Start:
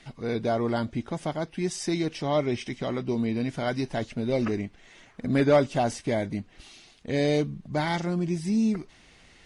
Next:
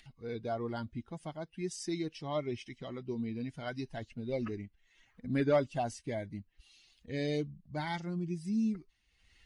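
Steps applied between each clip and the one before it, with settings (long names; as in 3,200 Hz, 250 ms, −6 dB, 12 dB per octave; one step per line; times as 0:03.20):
spectral dynamics exaggerated over time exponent 1.5
upward compression, threshold −45 dBFS
level −6.5 dB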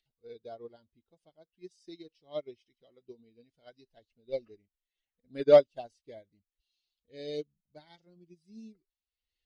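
graphic EQ with 10 bands 125 Hz −7 dB, 250 Hz −4 dB, 500 Hz +9 dB, 1,000 Hz −7 dB, 2,000 Hz −4 dB, 4,000 Hz +8 dB, 8,000 Hz −3 dB
expander for the loud parts 2.5 to 1, over −41 dBFS
level +7.5 dB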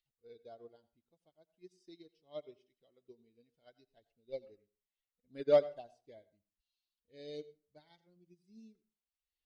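convolution reverb RT60 0.35 s, pre-delay 78 ms, DRR 17 dB
level −8 dB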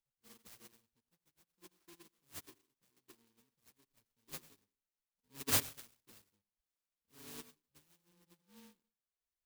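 samples in bit-reversed order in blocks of 64 samples
short delay modulated by noise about 3,200 Hz, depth 0.13 ms
level −3.5 dB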